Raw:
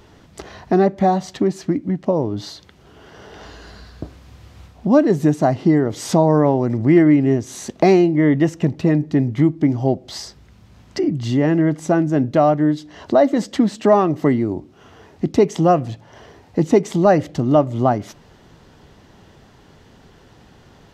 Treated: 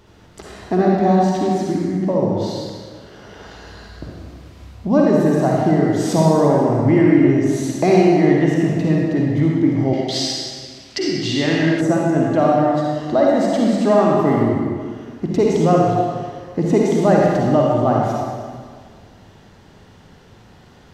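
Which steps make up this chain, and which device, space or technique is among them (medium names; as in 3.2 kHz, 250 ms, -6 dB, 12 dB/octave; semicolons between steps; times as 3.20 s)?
stairwell (reverberation RT60 1.8 s, pre-delay 43 ms, DRR -3.5 dB); 9.93–11.81 s: frequency weighting D; trim -3.5 dB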